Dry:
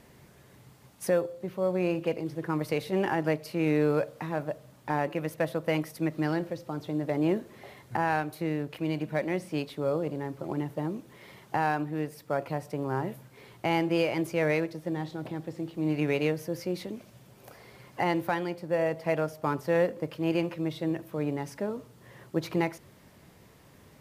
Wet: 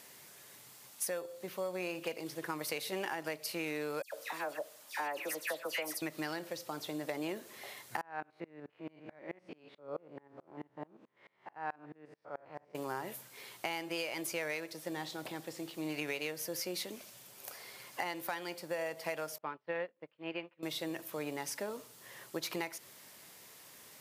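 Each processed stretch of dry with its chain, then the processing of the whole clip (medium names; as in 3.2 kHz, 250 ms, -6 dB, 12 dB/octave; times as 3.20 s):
4.02–6.02 s: high-pass 330 Hz + phase dispersion lows, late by 108 ms, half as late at 2.4 kHz
8.01–12.75 s: spectrogram pixelated in time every 100 ms + low-pass 1.7 kHz + sawtooth tremolo in dB swelling 4.6 Hz, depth 30 dB
19.38–20.63 s: low-pass 3.1 kHz 24 dB/octave + upward expansion 2.5:1, over -42 dBFS
whole clip: high-pass 740 Hz 6 dB/octave; treble shelf 3.4 kHz +11.5 dB; compression, threshold -34 dBFS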